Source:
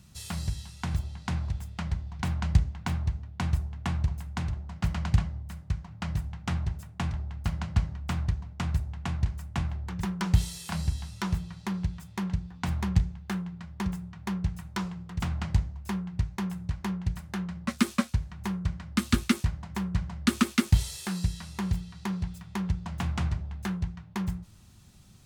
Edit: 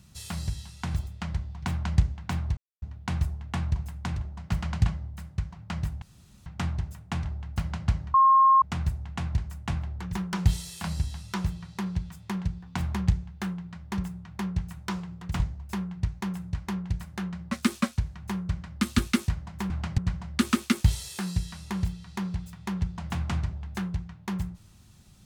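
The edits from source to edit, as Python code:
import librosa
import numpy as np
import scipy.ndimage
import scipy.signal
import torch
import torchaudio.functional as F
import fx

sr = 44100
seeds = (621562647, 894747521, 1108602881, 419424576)

y = fx.edit(x, sr, fx.cut(start_s=1.07, length_s=0.57),
    fx.insert_silence(at_s=3.14, length_s=0.25),
    fx.insert_room_tone(at_s=6.34, length_s=0.44),
    fx.bleep(start_s=8.02, length_s=0.48, hz=1070.0, db=-14.5),
    fx.move(start_s=15.28, length_s=0.28, to_s=19.86), tone=tone)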